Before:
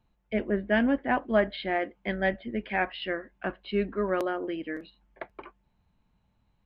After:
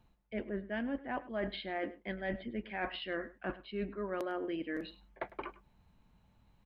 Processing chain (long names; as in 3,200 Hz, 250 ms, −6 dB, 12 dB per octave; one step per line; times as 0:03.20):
reversed playback
downward compressor 6 to 1, threshold −39 dBFS, peak gain reduction 19 dB
reversed playback
single-tap delay 103 ms −18 dB
level +3.5 dB